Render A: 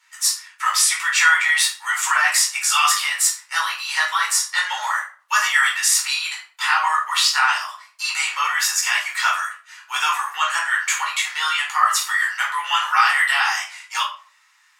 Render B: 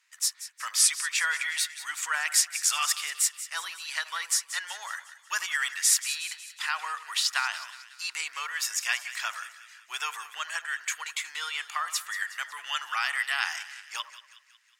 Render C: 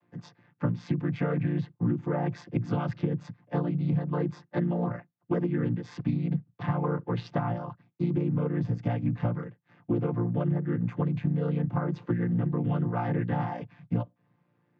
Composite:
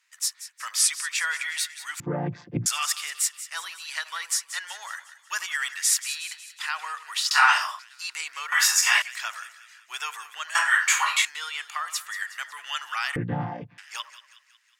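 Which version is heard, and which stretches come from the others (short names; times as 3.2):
B
2–2.66 from C
7.31–7.79 from A
8.52–9.02 from A
10.55–11.25 from A
13.16–13.78 from C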